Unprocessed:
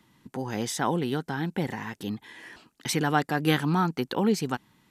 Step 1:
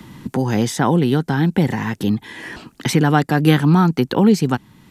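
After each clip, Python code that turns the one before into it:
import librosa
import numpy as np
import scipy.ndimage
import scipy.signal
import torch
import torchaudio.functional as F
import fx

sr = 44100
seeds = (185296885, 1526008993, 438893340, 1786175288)

y = fx.low_shelf(x, sr, hz=280.0, db=9.5)
y = fx.band_squash(y, sr, depth_pct=40)
y = y * 10.0 ** (6.5 / 20.0)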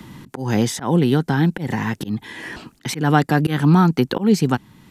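y = fx.auto_swell(x, sr, attack_ms=153.0)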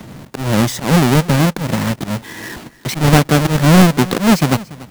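y = fx.halfwave_hold(x, sr)
y = y + 10.0 ** (-19.5 / 20.0) * np.pad(y, (int(288 * sr / 1000.0), 0))[:len(y)]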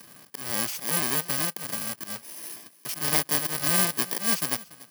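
y = fx.bit_reversed(x, sr, seeds[0], block=32)
y = fx.highpass(y, sr, hz=1100.0, slope=6)
y = y * 10.0 ** (-8.5 / 20.0)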